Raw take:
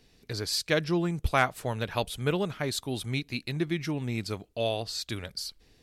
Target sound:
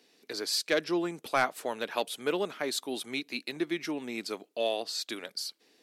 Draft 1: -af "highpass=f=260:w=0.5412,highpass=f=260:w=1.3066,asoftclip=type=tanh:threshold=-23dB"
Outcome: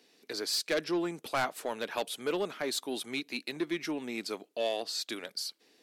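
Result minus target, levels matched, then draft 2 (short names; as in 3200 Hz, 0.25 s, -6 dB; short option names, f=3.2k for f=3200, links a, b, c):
soft clip: distortion +8 dB
-af "highpass=f=260:w=0.5412,highpass=f=260:w=1.3066,asoftclip=type=tanh:threshold=-14.5dB"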